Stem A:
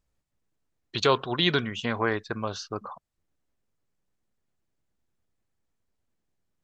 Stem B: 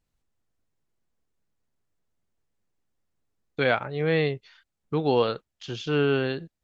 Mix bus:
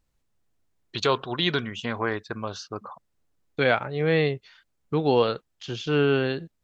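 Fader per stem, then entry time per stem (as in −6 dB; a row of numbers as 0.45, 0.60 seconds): −1.0, +1.5 decibels; 0.00, 0.00 seconds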